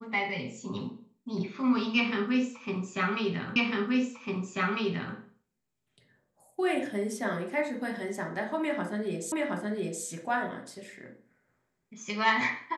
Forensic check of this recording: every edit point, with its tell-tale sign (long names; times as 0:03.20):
0:03.56: the same again, the last 1.6 s
0:09.32: the same again, the last 0.72 s